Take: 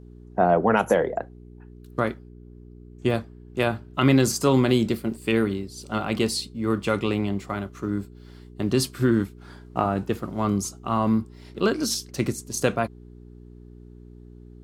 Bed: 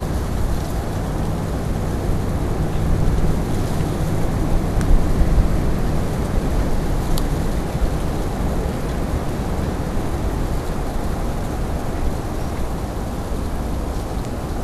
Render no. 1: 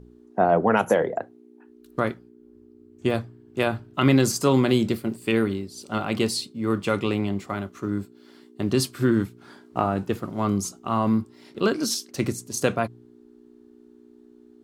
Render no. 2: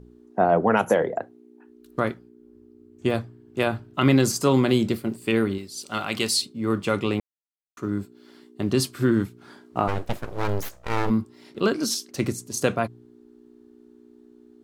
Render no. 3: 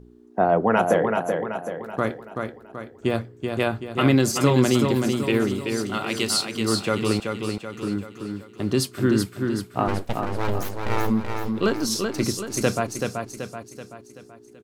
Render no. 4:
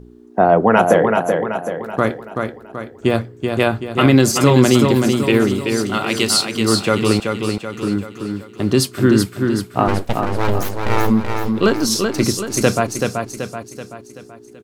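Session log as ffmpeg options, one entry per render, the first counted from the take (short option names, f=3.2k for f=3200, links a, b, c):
-af "bandreject=f=60:t=h:w=4,bandreject=f=120:t=h:w=4,bandreject=f=180:t=h:w=4"
-filter_complex "[0:a]asettb=1/sr,asplit=3[a][b][c];[a]atrim=end=5.584[d];[b]atrim=start=5.58:end=6.42,asetpts=PTS-STARTPTS,afade=t=in:d=0.004:c=qsin,afade=t=out:st=0.836:d=0.004:c=qsin,tiltshelf=f=1.1k:g=-6[e];[c]atrim=start=6.416[f];[d][e]acrossfade=d=0.004:c1=hsin:c2=qsin[g];[g][f]acrossfade=d=0.004:c1=qsin:c2=hsin,asplit=3[h][i][j];[h]afade=t=out:st=9.87:d=0.02[k];[i]aeval=exprs='abs(val(0))':c=same,afade=t=in:st=9.87:d=0.02,afade=t=out:st=11.09:d=0.02[l];[j]afade=t=in:st=11.09:d=0.02[m];[k][l][m]amix=inputs=3:normalize=0,asplit=3[n][o][p];[n]atrim=end=7.2,asetpts=PTS-STARTPTS,afade=t=out:st=7.196:d=0.004:c=hsin[q];[o]atrim=start=7.2:end=7.77,asetpts=PTS-STARTPTS,volume=0[r];[p]atrim=start=7.77,asetpts=PTS-STARTPTS,afade=t=in:d=0.004:c=hsin[s];[q][r][s]concat=n=3:v=0:a=1"
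-af "aecho=1:1:381|762|1143|1524|1905|2286:0.562|0.27|0.13|0.0622|0.0299|0.0143"
-af "volume=7dB,alimiter=limit=-1dB:level=0:latency=1"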